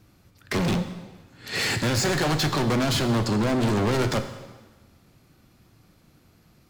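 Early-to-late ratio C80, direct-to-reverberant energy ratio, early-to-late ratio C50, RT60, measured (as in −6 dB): 11.5 dB, 8.0 dB, 10.0 dB, 1.3 s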